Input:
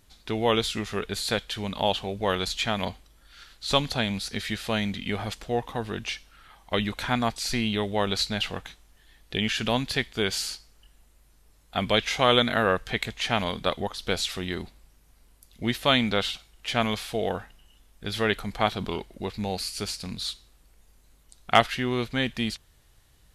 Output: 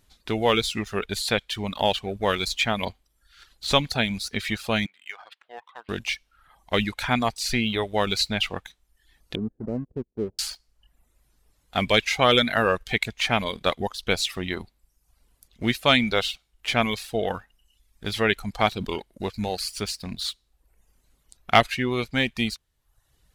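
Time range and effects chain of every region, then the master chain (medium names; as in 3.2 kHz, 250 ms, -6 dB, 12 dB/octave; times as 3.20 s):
4.86–5.89 s: high-pass 1.3 kHz + distance through air 420 m
9.35–10.39 s: companding laws mixed up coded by A + inverse Chebyshev low-pass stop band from 2.7 kHz, stop band 80 dB + bass shelf 110 Hz -7.5 dB
whole clip: waveshaping leveller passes 1; dynamic bell 2.3 kHz, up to +6 dB, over -42 dBFS, Q 5.8; reverb removal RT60 0.72 s; trim -1 dB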